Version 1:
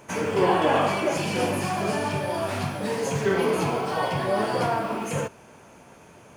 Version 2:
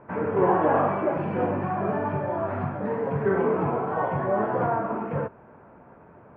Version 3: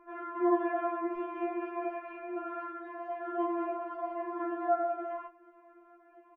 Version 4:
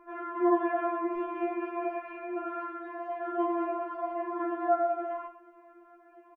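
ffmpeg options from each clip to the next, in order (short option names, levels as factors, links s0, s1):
-af "lowpass=f=1600:w=0.5412,lowpass=f=1600:w=1.3066"
-af "aecho=1:1:92:0.112,afftfilt=real='re*4*eq(mod(b,16),0)':imag='im*4*eq(mod(b,16),0)':win_size=2048:overlap=0.75,volume=0.596"
-af "aecho=1:1:112:0.2,volume=1.33"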